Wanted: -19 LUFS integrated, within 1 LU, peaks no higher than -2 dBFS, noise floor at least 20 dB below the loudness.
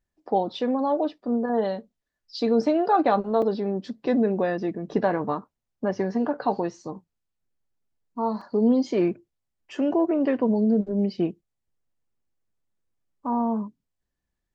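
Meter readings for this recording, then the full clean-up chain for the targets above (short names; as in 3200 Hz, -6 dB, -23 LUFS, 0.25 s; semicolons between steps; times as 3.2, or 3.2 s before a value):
dropouts 2; longest dropout 4.1 ms; loudness -25.0 LUFS; peak -9.0 dBFS; loudness target -19.0 LUFS
-> interpolate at 3.42/8.41, 4.1 ms; gain +6 dB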